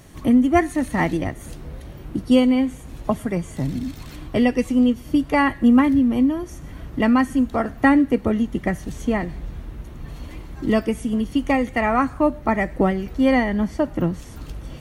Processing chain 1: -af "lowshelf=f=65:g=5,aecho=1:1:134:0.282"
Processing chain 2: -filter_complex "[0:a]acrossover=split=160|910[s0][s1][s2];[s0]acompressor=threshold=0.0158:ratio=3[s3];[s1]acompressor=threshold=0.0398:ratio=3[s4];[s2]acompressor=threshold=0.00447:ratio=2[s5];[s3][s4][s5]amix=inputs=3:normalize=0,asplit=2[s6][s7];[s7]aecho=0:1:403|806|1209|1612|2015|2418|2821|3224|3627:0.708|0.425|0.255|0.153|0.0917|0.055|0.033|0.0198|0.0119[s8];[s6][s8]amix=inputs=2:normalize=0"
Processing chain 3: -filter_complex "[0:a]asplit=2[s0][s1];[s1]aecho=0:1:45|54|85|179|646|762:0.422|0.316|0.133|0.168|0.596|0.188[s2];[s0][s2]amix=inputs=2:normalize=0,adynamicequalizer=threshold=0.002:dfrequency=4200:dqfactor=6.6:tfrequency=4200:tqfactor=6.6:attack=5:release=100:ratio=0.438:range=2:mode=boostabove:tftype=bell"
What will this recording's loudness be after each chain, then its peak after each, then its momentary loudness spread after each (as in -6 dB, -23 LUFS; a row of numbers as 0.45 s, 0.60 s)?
-20.0 LUFS, -27.0 LUFS, -19.0 LUFS; -3.0 dBFS, -11.5 dBFS, -2.0 dBFS; 18 LU, 6 LU, 12 LU